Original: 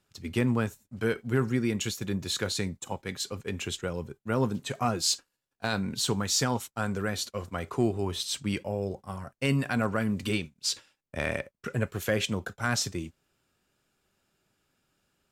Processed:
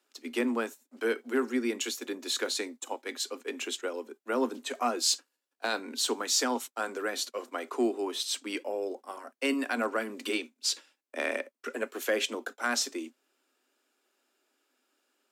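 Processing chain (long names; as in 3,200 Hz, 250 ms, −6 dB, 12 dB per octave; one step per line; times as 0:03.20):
Butterworth high-pass 240 Hz 96 dB per octave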